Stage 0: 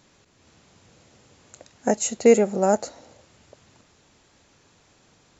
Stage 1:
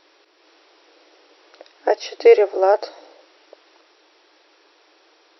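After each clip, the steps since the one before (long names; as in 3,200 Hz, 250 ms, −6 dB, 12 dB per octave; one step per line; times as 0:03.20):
brick-wall band-pass 300–5,800 Hz
level +5 dB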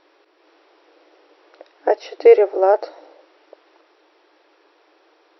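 low-pass filter 1,600 Hz 6 dB per octave
level +1.5 dB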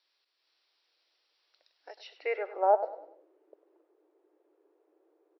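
band-pass filter sweep 4,500 Hz → 380 Hz, 0:01.93–0:03.10
dynamic equaliser 570 Hz, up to +4 dB, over −37 dBFS, Q 1
repeating echo 99 ms, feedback 37%, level −14 dB
level −7 dB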